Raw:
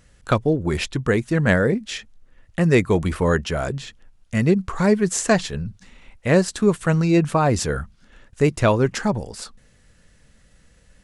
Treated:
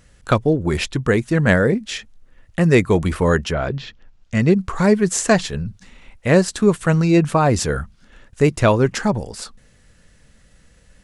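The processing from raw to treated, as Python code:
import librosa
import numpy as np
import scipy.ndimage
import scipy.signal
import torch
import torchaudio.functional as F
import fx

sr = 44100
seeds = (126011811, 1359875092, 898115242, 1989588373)

y = fx.lowpass(x, sr, hz=fx.line((3.51, 3800.0), (4.49, 8500.0)), slope=24, at=(3.51, 4.49), fade=0.02)
y = y * 10.0 ** (2.5 / 20.0)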